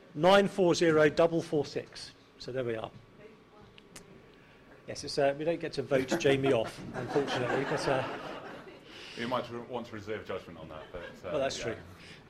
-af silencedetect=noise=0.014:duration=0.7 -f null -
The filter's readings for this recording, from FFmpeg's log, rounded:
silence_start: 2.87
silence_end: 3.78 | silence_duration: 0.91
silence_start: 3.97
silence_end: 4.89 | silence_duration: 0.92